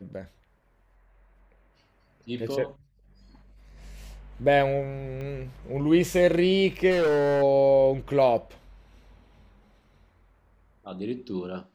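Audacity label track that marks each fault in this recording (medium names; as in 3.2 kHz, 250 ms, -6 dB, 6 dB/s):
5.210000	5.210000	pop -27 dBFS
6.900000	7.430000	clipped -20 dBFS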